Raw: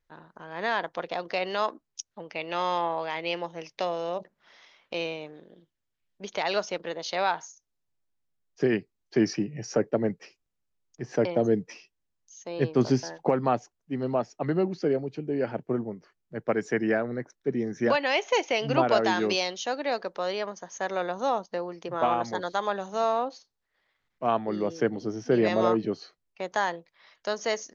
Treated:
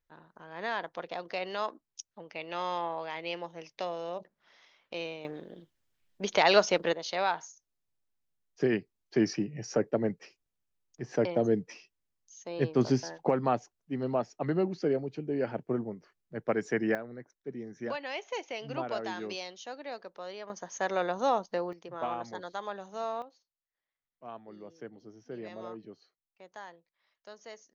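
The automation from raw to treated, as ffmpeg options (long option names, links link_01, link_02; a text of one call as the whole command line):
ffmpeg -i in.wav -af "asetnsamples=nb_out_samples=441:pad=0,asendcmd='5.25 volume volume 5.5dB;6.93 volume volume -3dB;16.95 volume volume -12dB;20.5 volume volume -0.5dB;21.73 volume volume -9.5dB;23.22 volume volume -19dB',volume=-6dB" out.wav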